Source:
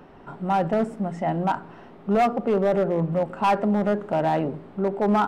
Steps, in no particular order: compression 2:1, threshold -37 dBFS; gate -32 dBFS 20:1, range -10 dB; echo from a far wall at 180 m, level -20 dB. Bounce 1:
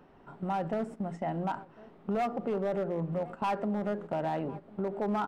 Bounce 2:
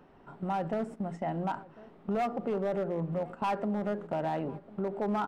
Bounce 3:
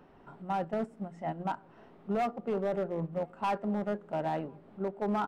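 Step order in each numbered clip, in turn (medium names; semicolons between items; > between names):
echo from a far wall > gate > compression; gate > compression > echo from a far wall; compression > echo from a far wall > gate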